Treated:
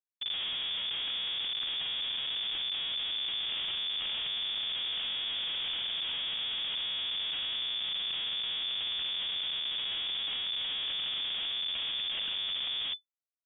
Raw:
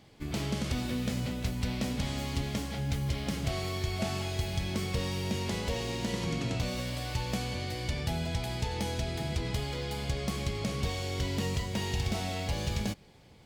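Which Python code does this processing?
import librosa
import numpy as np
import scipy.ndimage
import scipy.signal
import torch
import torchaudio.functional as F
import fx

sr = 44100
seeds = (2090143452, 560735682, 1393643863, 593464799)

p1 = x + fx.echo_bbd(x, sr, ms=123, stages=1024, feedback_pct=32, wet_db=-10.0, dry=0)
p2 = fx.rev_spring(p1, sr, rt60_s=1.3, pass_ms=(40, 48), chirp_ms=35, drr_db=14.0)
p3 = fx.schmitt(p2, sr, flips_db=-31.5)
p4 = fx.freq_invert(p3, sr, carrier_hz=3500)
y = F.gain(torch.from_numpy(p4), -2.5).numpy()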